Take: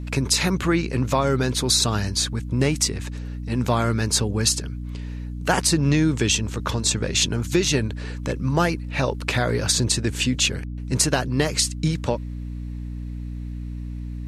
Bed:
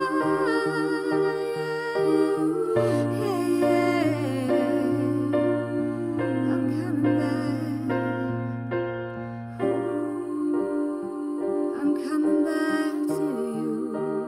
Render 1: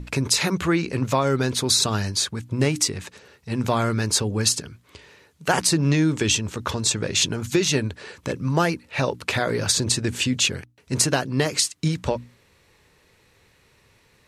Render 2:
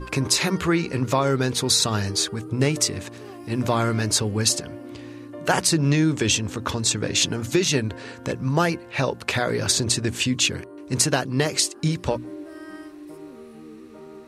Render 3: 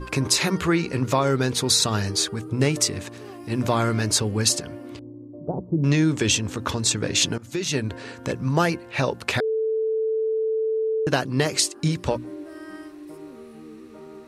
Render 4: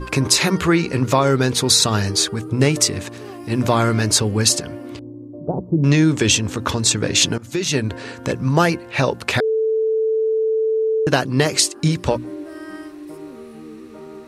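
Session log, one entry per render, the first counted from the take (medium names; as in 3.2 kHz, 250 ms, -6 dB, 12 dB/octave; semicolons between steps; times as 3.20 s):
hum notches 60/120/180/240/300 Hz
add bed -14.5 dB
4.99–5.84 s: Gaussian low-pass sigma 15 samples; 7.38–7.93 s: fade in, from -19 dB; 9.40–11.07 s: bleep 441 Hz -20.5 dBFS
trim +5 dB; peak limiter -1 dBFS, peak gain reduction 2 dB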